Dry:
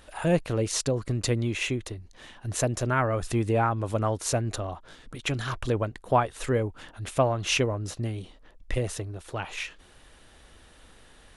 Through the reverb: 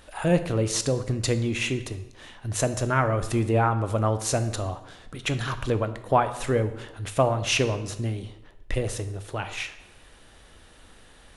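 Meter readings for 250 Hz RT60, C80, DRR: 0.95 s, 14.5 dB, 9.5 dB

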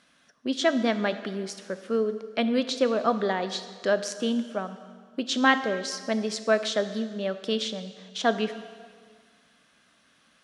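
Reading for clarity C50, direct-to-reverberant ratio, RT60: 12.0 dB, 10.5 dB, 1.8 s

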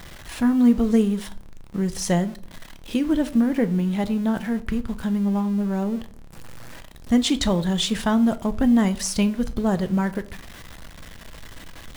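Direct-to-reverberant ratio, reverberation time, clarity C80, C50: 11.0 dB, 0.55 s, 22.0 dB, 18.0 dB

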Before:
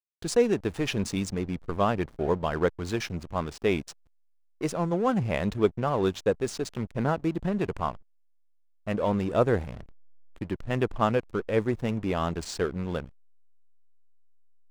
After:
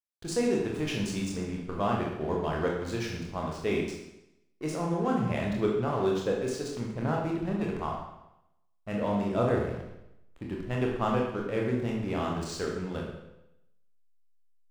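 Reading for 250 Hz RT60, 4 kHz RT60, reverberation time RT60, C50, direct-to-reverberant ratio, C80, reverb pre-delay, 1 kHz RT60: 0.90 s, 0.85 s, 0.90 s, 2.5 dB, -2.0 dB, 5.0 dB, 24 ms, 0.85 s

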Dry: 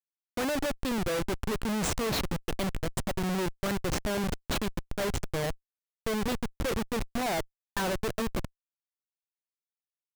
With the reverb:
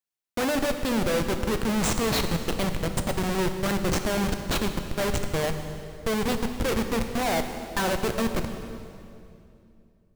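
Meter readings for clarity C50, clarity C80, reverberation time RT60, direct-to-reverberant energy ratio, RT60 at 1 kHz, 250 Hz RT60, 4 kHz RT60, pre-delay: 7.5 dB, 8.5 dB, 2.6 s, 6.0 dB, 2.4 s, 3.2 s, 2.2 s, 13 ms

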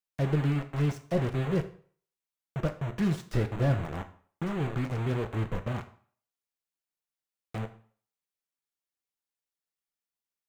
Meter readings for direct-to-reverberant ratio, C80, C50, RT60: 7.0 dB, 17.5 dB, 13.5 dB, 0.50 s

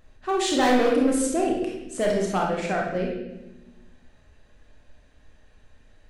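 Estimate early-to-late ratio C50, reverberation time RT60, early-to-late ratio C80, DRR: 1.5 dB, 1.0 s, 5.5 dB, -2.0 dB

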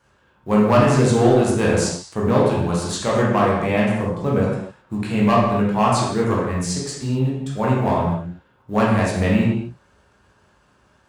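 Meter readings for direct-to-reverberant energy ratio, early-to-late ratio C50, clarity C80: -5.5 dB, 0.0 dB, 3.0 dB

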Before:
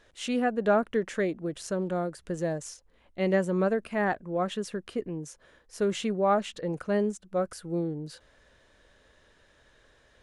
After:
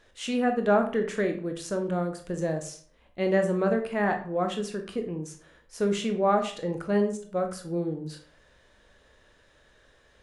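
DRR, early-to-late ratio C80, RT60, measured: 4.5 dB, 14.0 dB, 0.50 s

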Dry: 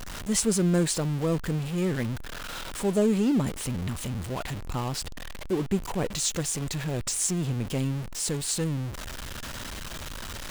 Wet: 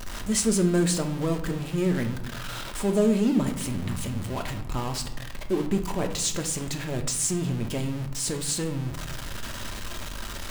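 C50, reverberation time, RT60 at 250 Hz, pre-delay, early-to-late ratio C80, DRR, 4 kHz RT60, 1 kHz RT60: 10.0 dB, 0.85 s, 1.3 s, 3 ms, 13.5 dB, 4.5 dB, 0.50 s, 0.85 s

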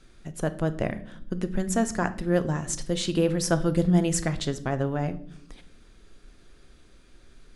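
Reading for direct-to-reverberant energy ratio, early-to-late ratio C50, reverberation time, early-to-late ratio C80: 11.0 dB, 16.0 dB, no single decay rate, 20.0 dB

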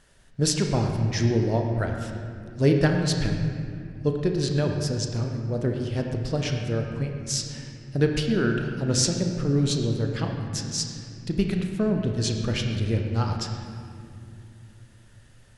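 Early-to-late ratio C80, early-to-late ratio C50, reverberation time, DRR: 4.5 dB, 3.5 dB, 2.5 s, 2.5 dB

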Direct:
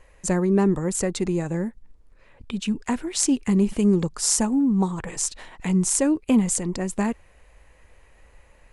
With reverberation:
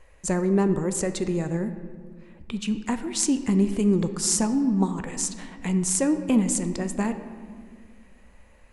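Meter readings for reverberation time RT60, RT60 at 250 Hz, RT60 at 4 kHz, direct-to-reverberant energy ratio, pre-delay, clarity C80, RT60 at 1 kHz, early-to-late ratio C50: 1.8 s, 2.5 s, 1.1 s, 9.0 dB, 12 ms, 12.0 dB, 1.6 s, 10.5 dB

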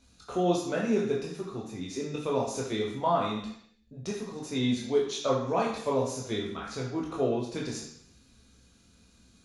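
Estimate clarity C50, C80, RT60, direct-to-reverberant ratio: 4.0 dB, 7.5 dB, 0.70 s, -3.0 dB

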